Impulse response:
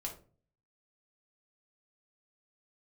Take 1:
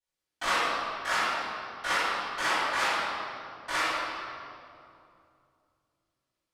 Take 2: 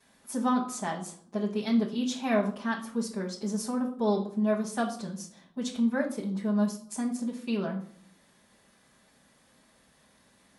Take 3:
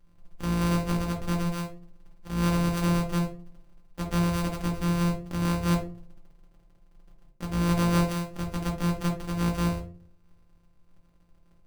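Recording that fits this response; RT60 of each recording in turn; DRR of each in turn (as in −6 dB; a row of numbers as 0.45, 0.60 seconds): 3; 2.6, 0.60, 0.40 seconds; −21.0, −10.5, −1.0 decibels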